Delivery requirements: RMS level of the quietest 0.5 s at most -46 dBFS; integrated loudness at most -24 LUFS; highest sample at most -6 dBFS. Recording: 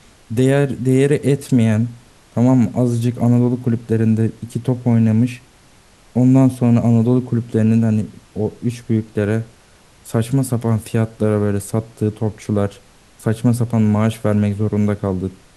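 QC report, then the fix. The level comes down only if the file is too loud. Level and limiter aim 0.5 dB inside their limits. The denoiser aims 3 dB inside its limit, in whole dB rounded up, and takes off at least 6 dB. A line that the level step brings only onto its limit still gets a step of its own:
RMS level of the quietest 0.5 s -49 dBFS: OK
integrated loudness -17.5 LUFS: fail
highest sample -4.0 dBFS: fail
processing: gain -7 dB

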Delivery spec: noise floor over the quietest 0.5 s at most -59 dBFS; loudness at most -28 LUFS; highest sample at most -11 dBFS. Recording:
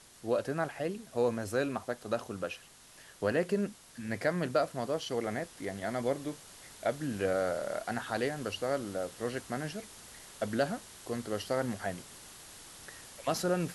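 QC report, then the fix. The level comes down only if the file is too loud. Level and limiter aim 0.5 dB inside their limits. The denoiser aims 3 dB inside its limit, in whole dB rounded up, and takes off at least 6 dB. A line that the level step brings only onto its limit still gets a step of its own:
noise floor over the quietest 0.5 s -56 dBFS: fail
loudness -34.5 LUFS: OK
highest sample -15.5 dBFS: OK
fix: denoiser 6 dB, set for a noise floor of -56 dBFS

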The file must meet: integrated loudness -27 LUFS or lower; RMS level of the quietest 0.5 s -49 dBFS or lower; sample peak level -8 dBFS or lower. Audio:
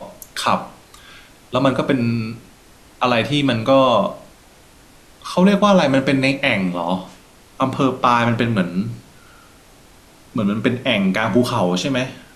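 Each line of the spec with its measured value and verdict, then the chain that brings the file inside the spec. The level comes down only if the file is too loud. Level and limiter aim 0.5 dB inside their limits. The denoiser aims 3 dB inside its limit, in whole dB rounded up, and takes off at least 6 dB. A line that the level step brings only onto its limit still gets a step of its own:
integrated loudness -18.0 LUFS: fail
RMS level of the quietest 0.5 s -47 dBFS: fail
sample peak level -3.5 dBFS: fail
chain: gain -9.5 dB

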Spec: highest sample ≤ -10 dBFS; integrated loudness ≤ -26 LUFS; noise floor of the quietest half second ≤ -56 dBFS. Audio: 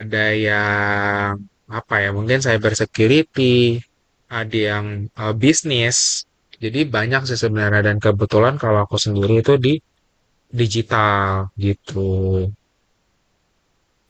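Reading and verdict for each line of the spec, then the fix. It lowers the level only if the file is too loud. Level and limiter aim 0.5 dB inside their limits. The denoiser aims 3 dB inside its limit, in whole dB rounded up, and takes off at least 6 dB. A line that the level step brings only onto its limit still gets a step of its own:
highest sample -3.0 dBFS: fail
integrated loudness -18.0 LUFS: fail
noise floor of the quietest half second -65 dBFS: OK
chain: gain -8.5 dB

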